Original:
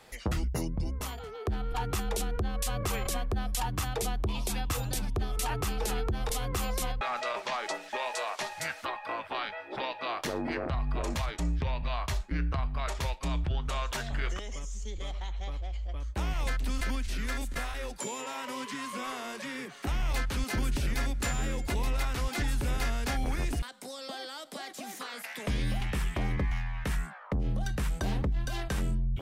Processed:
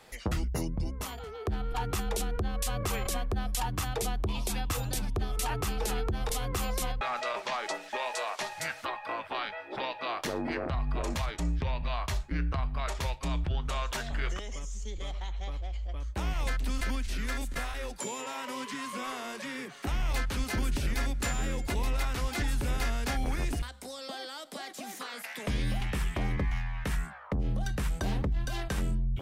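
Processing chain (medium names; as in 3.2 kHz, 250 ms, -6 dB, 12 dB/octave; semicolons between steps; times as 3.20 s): de-hum 67.65 Hz, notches 2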